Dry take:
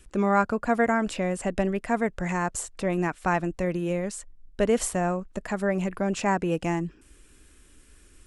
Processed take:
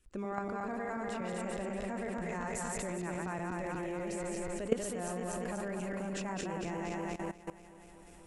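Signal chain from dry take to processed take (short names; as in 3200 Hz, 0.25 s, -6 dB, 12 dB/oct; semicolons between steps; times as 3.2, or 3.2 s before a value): regenerating reverse delay 0.121 s, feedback 78%, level -3 dB; level quantiser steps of 17 dB; gain -3.5 dB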